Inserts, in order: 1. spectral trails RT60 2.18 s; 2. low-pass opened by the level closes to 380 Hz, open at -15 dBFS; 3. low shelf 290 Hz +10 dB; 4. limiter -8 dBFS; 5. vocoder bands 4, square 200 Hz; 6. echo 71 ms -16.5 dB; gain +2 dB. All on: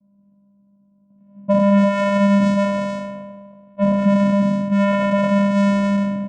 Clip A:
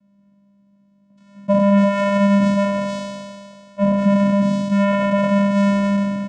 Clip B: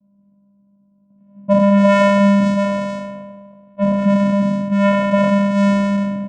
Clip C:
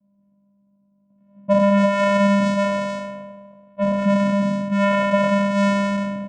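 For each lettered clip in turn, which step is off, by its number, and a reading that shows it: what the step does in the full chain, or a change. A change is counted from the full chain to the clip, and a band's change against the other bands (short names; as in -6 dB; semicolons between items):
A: 2, momentary loudness spread change +4 LU; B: 4, momentary loudness spread change +3 LU; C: 3, 250 Hz band -4.5 dB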